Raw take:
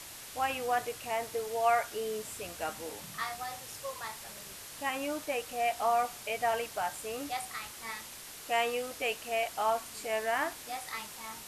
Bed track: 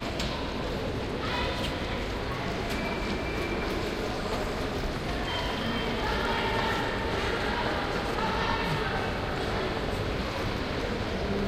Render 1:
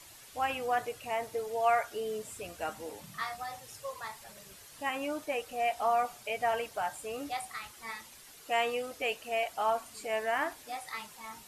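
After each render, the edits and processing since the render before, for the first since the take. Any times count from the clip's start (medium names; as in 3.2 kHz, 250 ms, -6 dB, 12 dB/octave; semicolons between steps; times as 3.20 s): noise reduction 9 dB, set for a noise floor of -47 dBFS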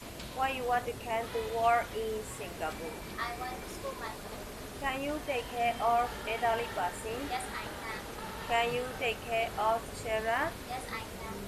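add bed track -13 dB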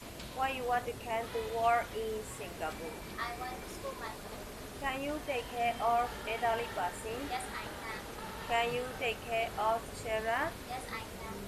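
trim -2 dB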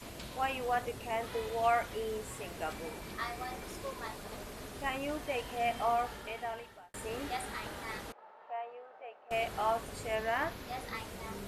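5.84–6.94 s: fade out; 8.12–9.31 s: ladder band-pass 810 Hz, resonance 40%; 10.15–10.95 s: peaking EQ 8.7 kHz -11.5 dB 0.26 oct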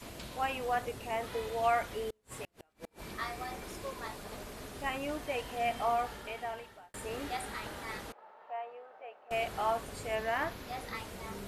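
2.10–3.08 s: inverted gate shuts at -31 dBFS, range -36 dB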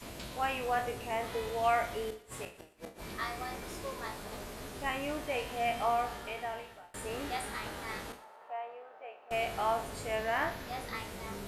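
spectral sustain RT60 0.32 s; thinning echo 119 ms, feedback 47%, level -17 dB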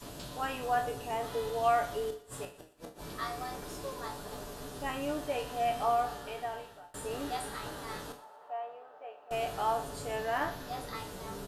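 peaking EQ 2.2 kHz -10 dB 0.47 oct; comb 6.9 ms, depth 43%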